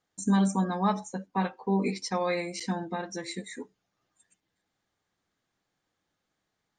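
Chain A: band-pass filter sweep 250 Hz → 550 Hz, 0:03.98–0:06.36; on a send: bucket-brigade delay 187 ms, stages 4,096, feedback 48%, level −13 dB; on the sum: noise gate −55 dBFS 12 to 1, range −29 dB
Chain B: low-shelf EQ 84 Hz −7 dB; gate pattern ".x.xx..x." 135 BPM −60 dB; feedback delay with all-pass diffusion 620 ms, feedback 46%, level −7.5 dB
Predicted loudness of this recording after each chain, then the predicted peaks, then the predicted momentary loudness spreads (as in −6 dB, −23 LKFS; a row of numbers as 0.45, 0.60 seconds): −35.0, −33.0 LKFS; −19.0, −15.0 dBFS; 16, 19 LU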